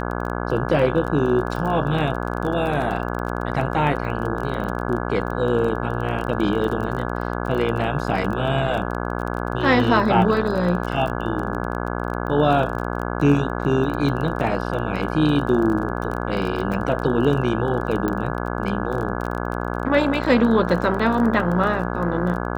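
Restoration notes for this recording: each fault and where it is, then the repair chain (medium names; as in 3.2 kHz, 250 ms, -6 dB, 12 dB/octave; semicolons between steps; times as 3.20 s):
buzz 60 Hz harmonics 28 -26 dBFS
crackle 23 per s -27 dBFS
18.08 s: pop -12 dBFS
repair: de-click; de-hum 60 Hz, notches 28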